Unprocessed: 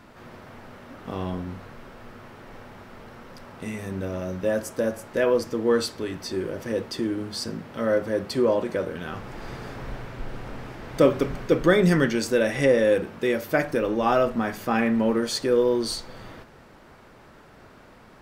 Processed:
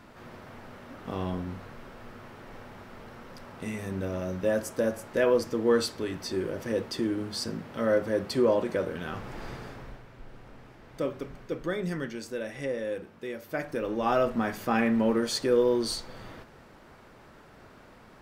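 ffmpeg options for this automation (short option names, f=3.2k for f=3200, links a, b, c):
-af "volume=8.5dB,afade=t=out:st=9.41:d=0.61:silence=0.281838,afade=t=in:st=13.38:d=1.02:silence=0.298538"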